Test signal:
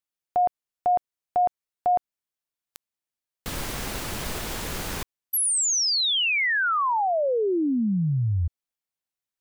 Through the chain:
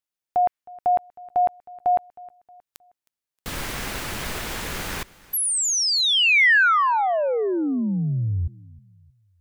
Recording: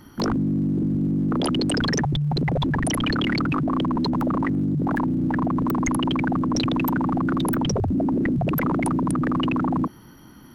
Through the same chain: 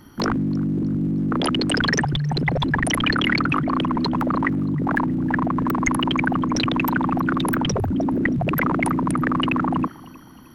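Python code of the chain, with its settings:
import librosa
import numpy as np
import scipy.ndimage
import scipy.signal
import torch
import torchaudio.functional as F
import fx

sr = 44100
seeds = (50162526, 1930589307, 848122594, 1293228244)

p1 = fx.dynamic_eq(x, sr, hz=1900.0, q=0.84, threshold_db=-41.0, ratio=4.0, max_db=8)
y = p1 + fx.echo_feedback(p1, sr, ms=314, feedback_pct=40, wet_db=-22.0, dry=0)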